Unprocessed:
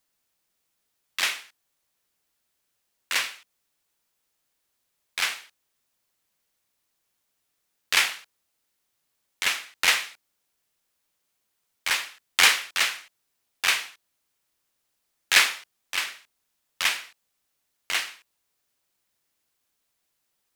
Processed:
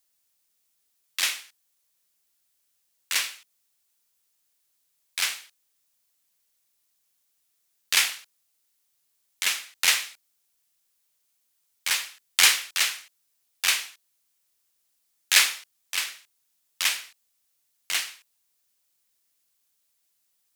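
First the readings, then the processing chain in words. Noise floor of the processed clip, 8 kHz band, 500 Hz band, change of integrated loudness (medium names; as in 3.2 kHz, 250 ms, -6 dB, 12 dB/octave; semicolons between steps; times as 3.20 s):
-73 dBFS, +3.5 dB, -5.5 dB, 0.0 dB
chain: treble shelf 3.2 kHz +11.5 dB; trim -6 dB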